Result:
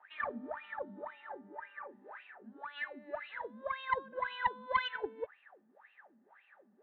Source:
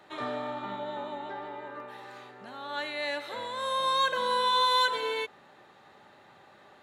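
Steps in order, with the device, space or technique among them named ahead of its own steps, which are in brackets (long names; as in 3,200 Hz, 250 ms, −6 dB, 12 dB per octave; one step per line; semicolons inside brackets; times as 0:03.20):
wah-wah guitar rig (LFO wah 1.9 Hz 210–2,800 Hz, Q 14; tube saturation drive 31 dB, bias 0.7; loudspeaker in its box 96–3,400 Hz, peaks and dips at 140 Hz −9 dB, 200 Hz +6 dB, 320 Hz −4 dB, 1,700 Hz +8 dB)
0:01.79–0:02.38: double-tracking delay 35 ms −8 dB
level +10.5 dB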